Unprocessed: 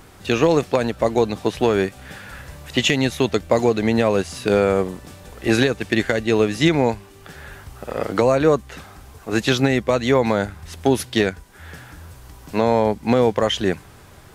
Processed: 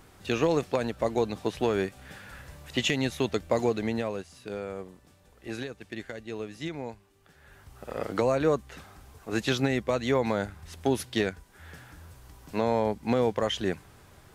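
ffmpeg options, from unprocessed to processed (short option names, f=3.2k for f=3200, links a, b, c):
-af "volume=2dB,afade=t=out:st=3.7:d=0.57:silence=0.298538,afade=t=in:st=7.4:d=0.53:silence=0.298538"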